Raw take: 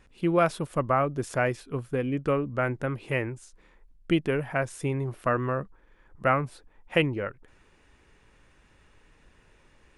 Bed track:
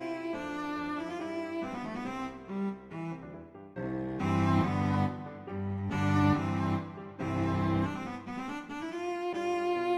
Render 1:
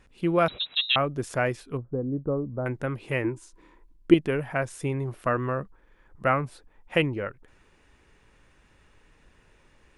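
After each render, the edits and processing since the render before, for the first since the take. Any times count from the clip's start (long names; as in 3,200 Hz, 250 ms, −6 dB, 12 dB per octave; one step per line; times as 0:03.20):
0:00.48–0:00.96: voice inversion scrambler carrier 3,900 Hz
0:01.77–0:02.66: Gaussian smoothing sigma 9.9 samples
0:03.24–0:04.14: hollow resonant body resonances 320/980 Hz, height 13 dB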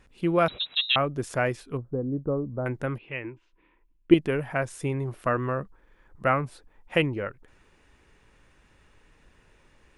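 0:02.98–0:04.11: transistor ladder low-pass 3,100 Hz, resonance 55%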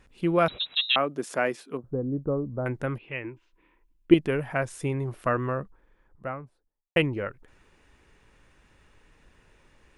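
0:00.77–0:01.84: high-pass filter 190 Hz 24 dB per octave
0:05.29–0:06.96: fade out and dull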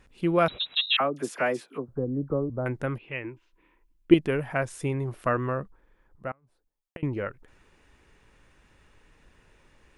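0:00.86–0:02.50: all-pass dispersion lows, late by 47 ms, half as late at 1,400 Hz
0:06.31–0:07.03: gate with flip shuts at −28 dBFS, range −28 dB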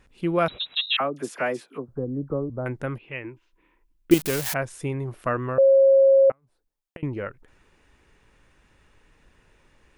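0:04.11–0:04.54: spike at every zero crossing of −15.5 dBFS
0:05.58–0:06.30: beep over 542 Hz −12 dBFS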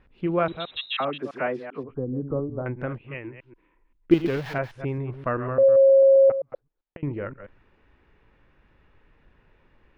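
delay that plays each chunk backwards 131 ms, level −10 dB
high-frequency loss of the air 320 metres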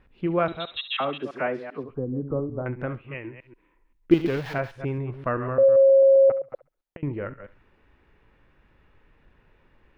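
feedback echo with a high-pass in the loop 68 ms, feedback 33%, high-pass 1,200 Hz, level −13.5 dB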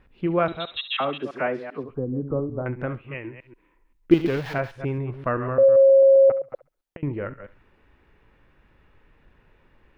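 level +1.5 dB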